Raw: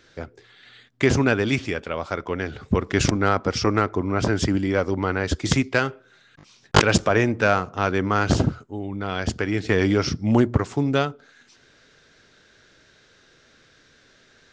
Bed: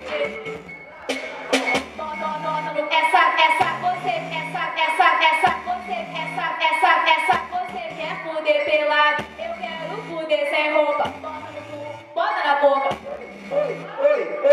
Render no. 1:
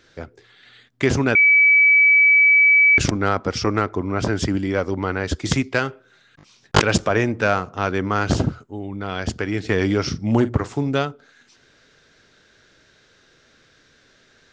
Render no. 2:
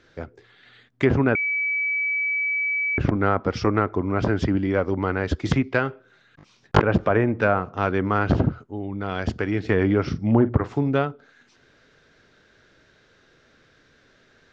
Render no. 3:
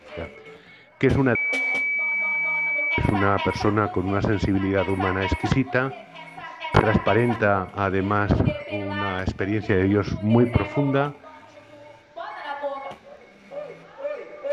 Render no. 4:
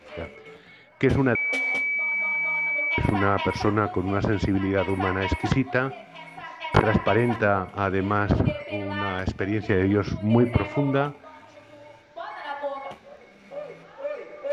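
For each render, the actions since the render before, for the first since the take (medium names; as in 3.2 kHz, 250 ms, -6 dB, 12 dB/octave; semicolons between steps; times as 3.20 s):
1.35–2.98 s: bleep 2.29 kHz -10 dBFS; 10.04–10.88 s: doubling 44 ms -13.5 dB
low-pass that closes with the level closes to 1.5 kHz, closed at -13 dBFS; treble shelf 3.8 kHz -11 dB
add bed -13 dB
trim -1.5 dB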